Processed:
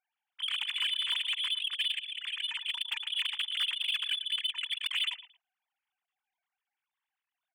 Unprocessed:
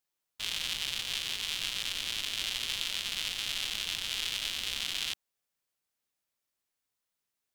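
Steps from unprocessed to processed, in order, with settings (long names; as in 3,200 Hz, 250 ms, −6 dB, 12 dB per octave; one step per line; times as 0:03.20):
three sine waves on the formant tracks
0:01.98–0:03.04: low-pass filter 2,300 Hz → 5,000 Hz 6 dB per octave
repeating echo 113 ms, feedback 20%, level −13.5 dB
harmonic generator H 5 −14 dB, 7 −16 dB, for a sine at −19 dBFS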